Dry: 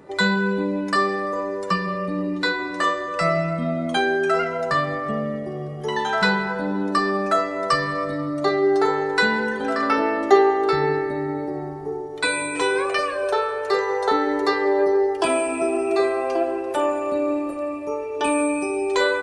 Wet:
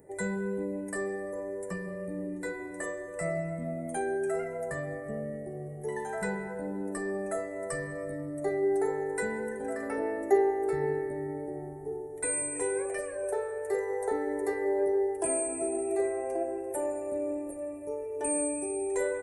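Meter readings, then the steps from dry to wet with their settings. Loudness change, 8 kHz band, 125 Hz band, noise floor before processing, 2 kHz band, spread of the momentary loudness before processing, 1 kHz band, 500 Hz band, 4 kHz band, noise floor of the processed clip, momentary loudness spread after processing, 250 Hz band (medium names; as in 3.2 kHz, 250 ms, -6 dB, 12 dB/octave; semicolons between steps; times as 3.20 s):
-10.5 dB, +1.5 dB, -10.0 dB, -30 dBFS, -16.0 dB, 7 LU, -16.0 dB, -8.5 dB, under -25 dB, -40 dBFS, 9 LU, -10.5 dB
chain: FFT filter 110 Hz 0 dB, 160 Hz -5 dB, 250 Hz -8 dB, 440 Hz -2 dB, 830 Hz -7 dB, 1.2 kHz -22 dB, 1.9 kHz -6 dB, 3.2 kHz -27 dB, 4.9 kHz -23 dB, 8.9 kHz +10 dB; trim -5 dB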